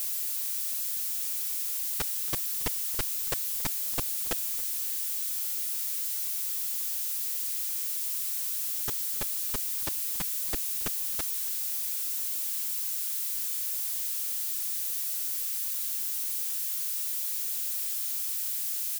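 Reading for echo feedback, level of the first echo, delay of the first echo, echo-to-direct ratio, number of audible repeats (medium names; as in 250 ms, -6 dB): 46%, -20.0 dB, 277 ms, -19.0 dB, 3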